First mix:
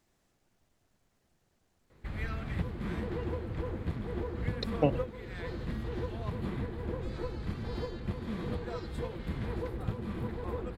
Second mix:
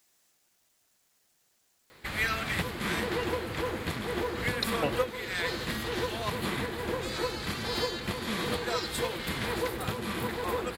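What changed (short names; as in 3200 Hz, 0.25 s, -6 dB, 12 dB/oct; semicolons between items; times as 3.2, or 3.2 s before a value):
background +10.5 dB; master: add tilt +4 dB/oct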